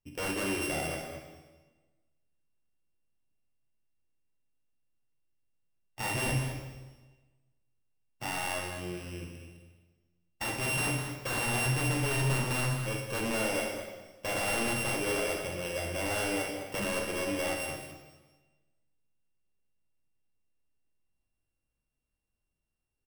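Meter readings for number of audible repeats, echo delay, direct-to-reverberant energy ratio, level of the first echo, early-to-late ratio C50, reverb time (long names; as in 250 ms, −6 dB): 1, 209 ms, 1.0 dB, −8.5 dB, 2.5 dB, 1.2 s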